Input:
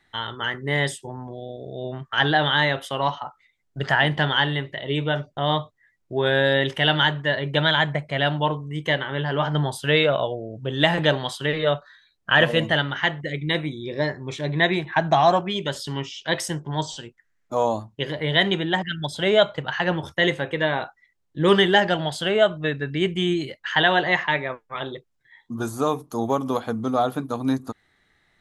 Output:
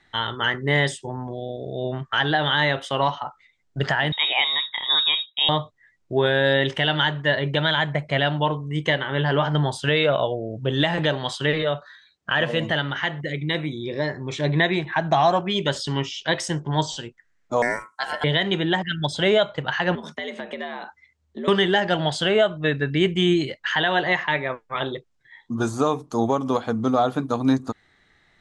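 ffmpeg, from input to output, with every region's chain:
-filter_complex "[0:a]asettb=1/sr,asplit=3[s0][s1][s2];[s0]atrim=end=4.124[s3];[s1]atrim=start=4.12:end=5.49,asetpts=PTS-STARTPTS,afade=t=in:d=0.004:c=qsin,afade=t=out:st=1.366:d=0.004:c=qsin,aemphasis=mode=reproduction:type=50fm,lowpass=f=3300:t=q:w=0.5098,lowpass=f=3300:t=q:w=0.6013,lowpass=f=3300:t=q:w=0.9,lowpass=f=3300:t=q:w=2.563,afreqshift=-3900[s4];[s2]atrim=start=5.486[s5];[s3][s4]acrossfade=d=0.004:c1=hsin:c2=qsin[s6];[s6][s5]acrossfade=d=0.004:c1=qsin:c2=hsin,asettb=1/sr,asplit=3[s7][s8][s9];[s7]atrim=end=11.624[s10];[s8]atrim=start=11.62:end=14.38,asetpts=PTS-STARTPTS,afade=t=in:d=0.004:c=qsin,afade=t=out:st=2.756:d=0.004:c=qsin,highpass=66,acompressor=threshold=0.0251:ratio=1.5:attack=3.2:release=140:knee=1:detection=peak[s11];[s9]atrim=start=14.376[s12];[s10][s11]acrossfade=d=0.004:c1=hsin:c2=qsin[s13];[s13][s12]acrossfade=d=0.004:c1=qsin:c2=hsin,asettb=1/sr,asplit=3[s14][s15][s16];[s14]atrim=end=17.624[s17];[s15]atrim=start=17.62:end=18.24,asetpts=PTS-STARTPTS,afade=t=in:d=0.004:c=qsin,afade=t=out:st=0.616:d=0.004:c=qsin,highpass=120,highshelf=f=6700:t=q:w=3:g=14,aeval=exprs='val(0)*sin(2*PI*1200*n/s)':c=same[s18];[s16]atrim=start=18.236[s19];[s17][s18]acrossfade=d=0.004:c1=hsin:c2=qsin[s20];[s20][s19]acrossfade=d=0.004:c1=qsin:c2=hsin,asettb=1/sr,asplit=3[s21][s22][s23];[s21]atrim=end=19.954[s24];[s22]atrim=start=19.95:end=21.48,asetpts=PTS-STARTPTS,afade=t=in:d=0.004:c=qsin,afade=t=out:st=1.526:d=0.004:c=qsin,acompressor=threshold=0.0224:ratio=5:attack=3.2:release=140:knee=1:detection=peak,afreqshift=76[s25];[s23]atrim=start=21.476[s26];[s24][s25]acrossfade=d=0.004:c1=hsin:c2=qsin[s27];[s27][s26]acrossfade=d=0.004:c1=qsin:c2=hsin,lowpass=f=8200:w=0.5412,lowpass=f=8200:w=1.3066,alimiter=limit=0.224:level=0:latency=1:release=331,volume=1.58"

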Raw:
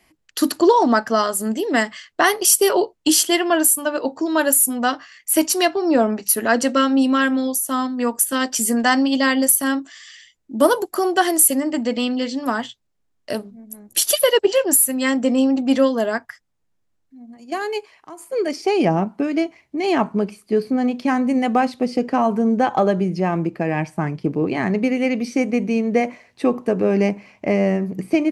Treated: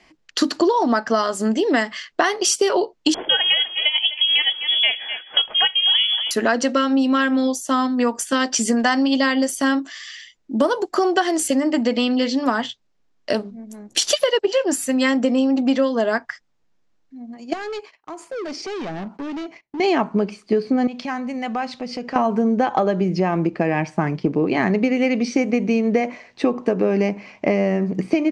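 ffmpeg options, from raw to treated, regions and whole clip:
-filter_complex "[0:a]asettb=1/sr,asplit=3[s0][s1][s2];[s0]atrim=end=3.144[s3];[s1]atrim=start=3.14:end=6.31,asetpts=PTS-STARTPTS,afade=t=in:d=0.004:c=qsin,afade=t=out:st=3.166:d=0.004:c=qsin,aecho=1:1:253|506|759:0.168|0.0453|0.0122,atrim=end_sample=139797,lowpass=f=3100:t=q:w=0.5098,lowpass=f=3100:t=q:w=0.6013,lowpass=f=3100:t=q:w=0.9,lowpass=f=3100:t=q:w=2.563,afreqshift=-3600[s4];[s2]atrim=start=6.306[s5];[s3][s4]acrossfade=d=0.004:c1=hsin:c2=qsin[s6];[s6][s5]acrossfade=d=0.004:c1=qsin:c2=hsin,asettb=1/sr,asplit=3[s7][s8][s9];[s7]atrim=end=17.534[s10];[s8]atrim=start=17.53:end=19.8,asetpts=PTS-STARTPTS,afade=t=in:d=0.004:c=qsin,afade=t=out:st=2.266:d=0.004:c=qsin,agate=range=0.0708:threshold=0.00316:ratio=16:release=100:detection=peak,acompressor=threshold=0.02:ratio=2:attack=3.2:release=140:knee=1:detection=peak,asoftclip=type=hard:threshold=0.0251[s11];[s9]atrim=start=19.796[s12];[s10][s11]acrossfade=d=0.004:c1=hsin:c2=qsin[s13];[s13][s12]acrossfade=d=0.004:c1=qsin:c2=hsin,asettb=1/sr,asplit=3[s14][s15][s16];[s14]atrim=end=20.874[s17];[s15]atrim=start=20.87:end=22.16,asetpts=PTS-STARTPTS,afade=t=in:d=0.004:c=qsin,afade=t=out:st=1.286:d=0.004:c=qsin,acompressor=threshold=0.0398:ratio=2.5:attack=3.2:release=140:knee=1:detection=peak,equalizer=f=350:t=o:w=1.1:g=-10[s18];[s16]atrim=start=22.156[s19];[s17][s18]acrossfade=d=0.004:c1=hsin:c2=qsin[s20];[s20][s19]acrossfade=d=0.004:c1=qsin:c2=hsin,lowpass=f=6600:w=0.5412,lowpass=f=6600:w=1.3066,equalizer=f=81:t=o:w=1.1:g=-11,acompressor=threshold=0.0891:ratio=6,volume=2"

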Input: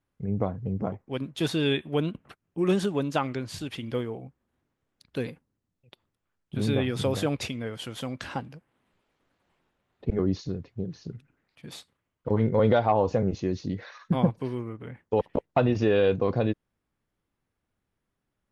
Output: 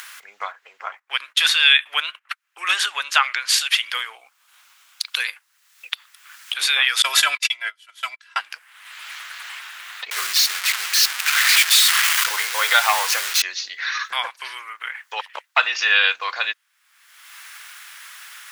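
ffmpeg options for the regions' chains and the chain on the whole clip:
-filter_complex "[0:a]asettb=1/sr,asplit=3[s0][s1][s2];[s0]atrim=end=0.524[s3];[s1]atrim=start=0.52:end=3.49,asetpts=PTS-STARTPTS,afade=t=in:d=0.004:c=qsin,afade=t=out:st=2.966:d=0.004:c=qsin,agate=range=0.141:threshold=0.00447:ratio=16:release=100:detection=peak,bass=f=250:g=-12,treble=f=4000:g=-5[s4];[s2]atrim=start=3.486[s5];[s3][s4]acrossfade=d=0.004:c1=hsin:c2=qsin[s6];[s6][s5]acrossfade=d=0.004:c1=qsin:c2=hsin,asettb=1/sr,asplit=3[s7][s8][s9];[s7]atrim=end=4.164[s10];[s8]atrim=start=4.16:end=5.2,asetpts=PTS-STARTPTS,afade=t=in:d=0.004:c=qsin,afade=t=out:st=1.036:d=0.004:c=qsin,equalizer=f=1800:t=o:w=0.48:g=-8.5,aeval=exprs='val(0)+0.00112*(sin(2*PI*50*n/s)+sin(2*PI*2*50*n/s)/2+sin(2*PI*3*50*n/s)/3+sin(2*PI*4*50*n/s)/4+sin(2*PI*5*50*n/s)/5)':c=same[s11];[s9]atrim=start=5.196[s12];[s10][s11]acrossfade=d=0.004:c1=hsin:c2=qsin[s13];[s13][s12]acrossfade=d=0.004:c1=qsin:c2=hsin,asettb=1/sr,asplit=3[s14][s15][s16];[s14]atrim=end=7.024[s17];[s15]atrim=start=7.02:end=8.39,asetpts=PTS-STARTPTS,afade=t=in:d=0.004:c=qsin,afade=t=out:st=1.366:d=0.004:c=qsin,agate=range=0.00891:threshold=0.0251:ratio=16:release=100:detection=peak,aecho=1:1:3:0.92,atrim=end_sample=60417[s18];[s16]atrim=start=8.386[s19];[s17][s18]acrossfade=d=0.004:c1=hsin:c2=qsin[s20];[s20][s19]acrossfade=d=0.004:c1=qsin:c2=hsin,asettb=1/sr,asplit=3[s21][s22][s23];[s21]atrim=end=10.114[s24];[s22]atrim=start=10.11:end=13.42,asetpts=PTS-STARTPTS,afade=t=in:d=0.004:c=qsin,afade=t=out:st=3.306:d=0.004:c=qsin,aeval=exprs='val(0)+0.5*0.0224*sgn(val(0))':c=same,acrusher=bits=8:dc=4:mix=0:aa=0.000001[s25];[s23]atrim=start=13.416[s26];[s24][s25]acrossfade=d=0.004:c1=hsin:c2=qsin[s27];[s27][s26]acrossfade=d=0.004:c1=qsin:c2=hsin,acompressor=mode=upward:threshold=0.0355:ratio=2.5,highpass=f=1400:w=0.5412,highpass=f=1400:w=1.3066,alimiter=level_in=11.9:limit=0.891:release=50:level=0:latency=1,volume=0.891"

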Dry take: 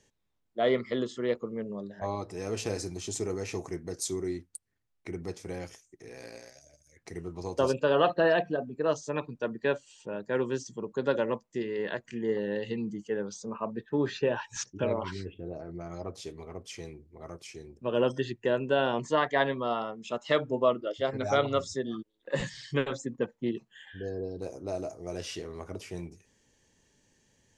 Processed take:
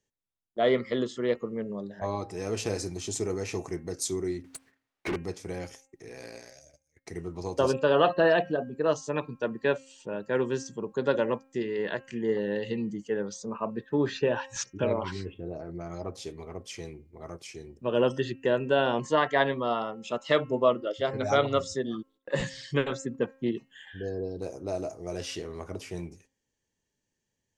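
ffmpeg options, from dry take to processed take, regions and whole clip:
-filter_complex "[0:a]asettb=1/sr,asplit=3[s0][s1][s2];[s0]atrim=end=4.444[s3];[s1]atrim=start=4.44:end=5.16,asetpts=PTS-STARTPTS,afade=t=in:d=0.004:c=qsin,afade=t=out:st=0.716:d=0.004:c=qsin,highshelf=f=3900:g=-5,asplit=2[s4][s5];[s5]highpass=f=720:p=1,volume=39.8,asoftclip=type=tanh:threshold=0.0562[s6];[s4][s6]amix=inputs=2:normalize=0,lowpass=f=3300:p=1,volume=0.501[s7];[s2]atrim=start=5.156[s8];[s3][s7]acrossfade=d=0.004:c1=hsin:c2=qsin[s9];[s9][s8]acrossfade=d=0.004:c1=qsin:c2=hsin,agate=range=0.141:threshold=0.00126:ratio=16:detection=peak,bandreject=f=267:t=h:w=4,bandreject=f=534:t=h:w=4,bandreject=f=801:t=h:w=4,bandreject=f=1068:t=h:w=4,bandreject=f=1335:t=h:w=4,bandreject=f=1602:t=h:w=4,bandreject=f=1869:t=h:w=4,bandreject=f=2136:t=h:w=4,bandreject=f=2403:t=h:w=4,bandreject=f=2670:t=h:w=4,bandreject=f=2937:t=h:w=4,volume=1.26"

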